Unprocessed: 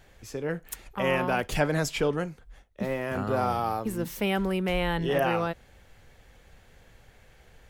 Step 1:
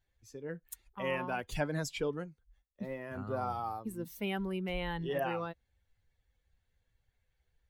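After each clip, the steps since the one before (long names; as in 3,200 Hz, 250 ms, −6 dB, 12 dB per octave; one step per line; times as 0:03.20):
spectral dynamics exaggerated over time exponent 1.5
level −6.5 dB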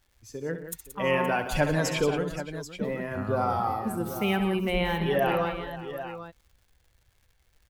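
multi-tap delay 67/127/177/521/785 ms −10.5/−16.5/−10/−15.5/−11 dB
surface crackle 200 per second −61 dBFS
level +8.5 dB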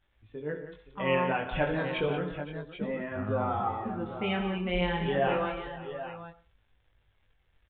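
chorus effect 0.32 Hz, delay 19 ms, depth 3.8 ms
on a send at −18 dB: convolution reverb RT60 0.35 s, pre-delay 92 ms
on the sum: downsampling to 8,000 Hz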